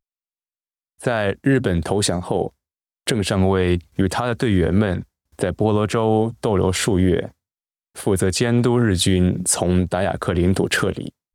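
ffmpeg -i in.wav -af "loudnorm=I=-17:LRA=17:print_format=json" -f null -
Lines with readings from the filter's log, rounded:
"input_i" : "-19.7",
"input_tp" : "-6.4",
"input_lra" : "2.1",
"input_thresh" : "-30.0",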